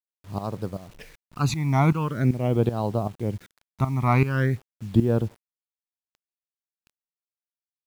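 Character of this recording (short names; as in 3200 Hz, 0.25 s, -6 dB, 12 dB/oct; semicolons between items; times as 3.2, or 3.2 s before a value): tremolo saw up 2.6 Hz, depth 80%; phasing stages 12, 0.44 Hz, lowest notch 490–2100 Hz; a quantiser's noise floor 10-bit, dither none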